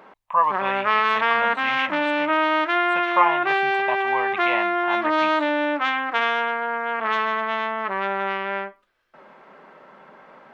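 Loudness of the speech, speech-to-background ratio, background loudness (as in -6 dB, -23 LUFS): -26.5 LUFS, -4.5 dB, -22.0 LUFS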